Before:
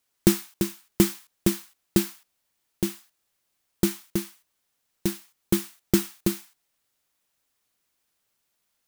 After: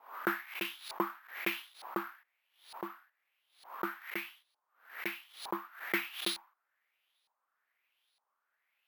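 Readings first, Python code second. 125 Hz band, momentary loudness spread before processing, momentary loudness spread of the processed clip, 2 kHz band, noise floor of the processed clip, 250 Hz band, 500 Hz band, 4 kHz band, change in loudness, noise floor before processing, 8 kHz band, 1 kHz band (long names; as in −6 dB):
−26.5 dB, 12 LU, 12 LU, +3.0 dB, −84 dBFS, −18.0 dB, −13.5 dB, −5.0 dB, −11.0 dB, −76 dBFS, −18.5 dB, +4.5 dB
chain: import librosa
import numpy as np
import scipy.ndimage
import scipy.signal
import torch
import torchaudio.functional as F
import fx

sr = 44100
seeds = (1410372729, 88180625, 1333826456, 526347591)

y = scipy.signal.sosfilt(scipy.signal.butter(2, 670.0, 'highpass', fs=sr, output='sos'), x)
y = fx.filter_lfo_lowpass(y, sr, shape='saw_up', hz=1.1, low_hz=880.0, high_hz=4300.0, q=4.7)
y = np.repeat(y[::3], 3)[:len(y)]
y = fx.pre_swell(y, sr, db_per_s=130.0)
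y = y * librosa.db_to_amplitude(-3.5)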